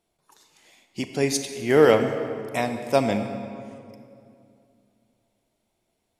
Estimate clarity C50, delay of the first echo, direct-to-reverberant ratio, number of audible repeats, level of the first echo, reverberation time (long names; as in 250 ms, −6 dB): 7.5 dB, no echo audible, 7.0 dB, no echo audible, no echo audible, 2.5 s